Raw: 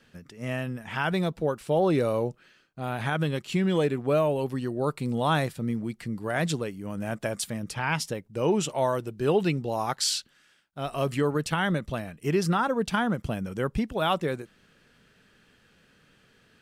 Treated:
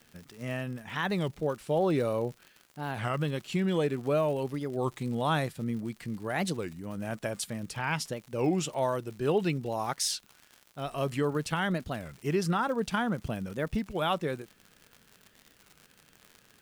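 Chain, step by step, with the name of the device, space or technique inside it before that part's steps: warped LP (warped record 33 1/3 rpm, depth 250 cents; crackle 120 per s -36 dBFS; white noise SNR 40 dB); trim -3.5 dB

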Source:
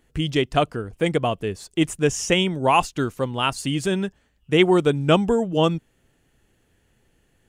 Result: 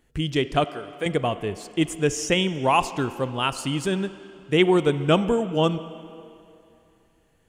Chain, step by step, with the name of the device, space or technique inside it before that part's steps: 0.64–1.06 s: high-pass 610 Hz 6 dB/octave; filtered reverb send (on a send: high-pass 180 Hz 24 dB/octave + low-pass 6.4 kHz 12 dB/octave + reverberation RT60 2.8 s, pre-delay 26 ms, DRR 13 dB); on the sum: trim -2 dB

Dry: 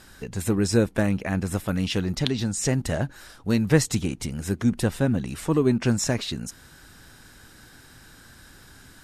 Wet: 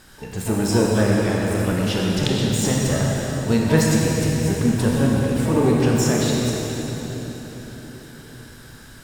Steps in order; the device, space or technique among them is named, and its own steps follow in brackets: shimmer-style reverb (harmony voices +12 st -12 dB; reverberation RT60 4.4 s, pre-delay 22 ms, DRR -3 dB)

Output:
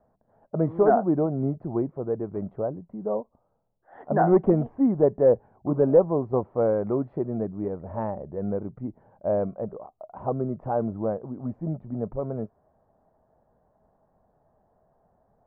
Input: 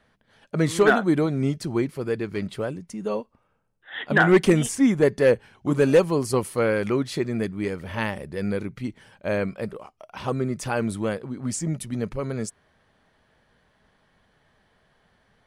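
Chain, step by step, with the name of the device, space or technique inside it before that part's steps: under water (low-pass 1 kHz 24 dB/octave; peaking EQ 680 Hz +8.5 dB 0.59 oct); trim -3 dB

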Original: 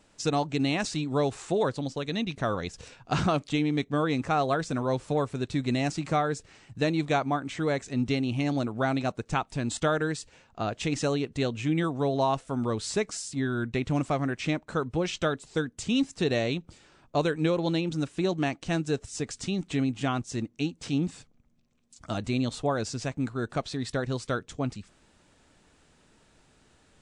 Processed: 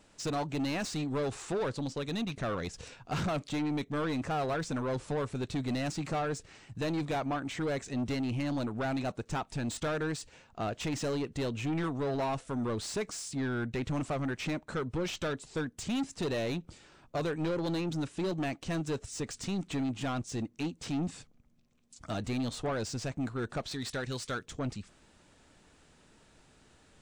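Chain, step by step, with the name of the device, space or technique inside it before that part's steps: 23.71–24.46 s: tilt shelf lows -5 dB, about 1.3 kHz; saturation between pre-emphasis and de-emphasis (treble shelf 3.8 kHz +11 dB; saturation -28 dBFS, distortion -8 dB; treble shelf 3.8 kHz -11 dB)

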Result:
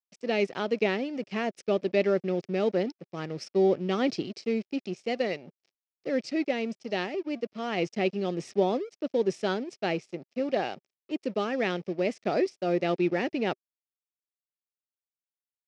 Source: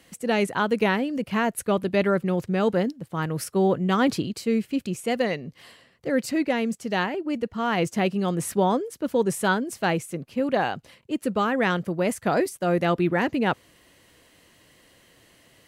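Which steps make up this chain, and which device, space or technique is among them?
blown loudspeaker (crossover distortion -40.5 dBFS; cabinet simulation 170–5900 Hz, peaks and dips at 380 Hz +6 dB, 610 Hz +4 dB, 1 kHz -9 dB, 1.5 kHz -6 dB, 2.4 kHz +5 dB, 5.3 kHz +9 dB); trim -5 dB

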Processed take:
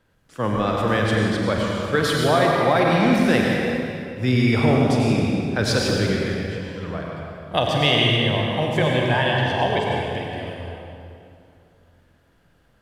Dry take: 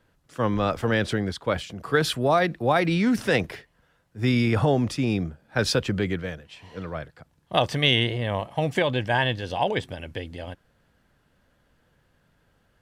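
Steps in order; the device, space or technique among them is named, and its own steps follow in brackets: tunnel (flutter echo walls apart 8.1 m, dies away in 0.29 s; reverberation RT60 2.6 s, pre-delay 83 ms, DRR -1.5 dB)

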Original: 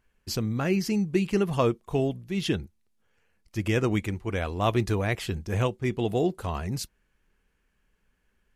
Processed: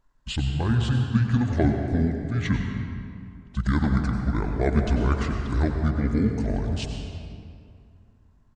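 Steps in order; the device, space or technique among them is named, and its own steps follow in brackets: monster voice (pitch shift -8.5 st; bass shelf 120 Hz +5.5 dB; reverberation RT60 2.4 s, pre-delay 83 ms, DRR 3.5 dB)

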